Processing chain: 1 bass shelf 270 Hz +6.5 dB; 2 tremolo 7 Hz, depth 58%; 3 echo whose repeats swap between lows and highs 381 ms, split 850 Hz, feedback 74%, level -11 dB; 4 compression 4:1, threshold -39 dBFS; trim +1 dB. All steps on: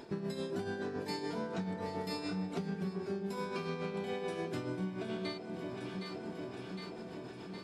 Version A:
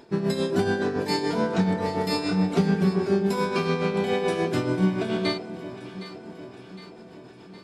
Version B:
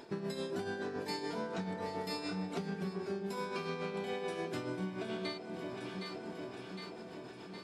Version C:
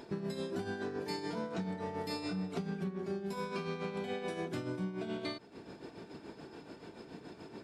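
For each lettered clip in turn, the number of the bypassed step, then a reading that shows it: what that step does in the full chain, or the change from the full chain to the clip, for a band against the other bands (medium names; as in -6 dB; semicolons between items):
4, mean gain reduction 10.0 dB; 1, 125 Hz band -3.5 dB; 3, momentary loudness spread change +6 LU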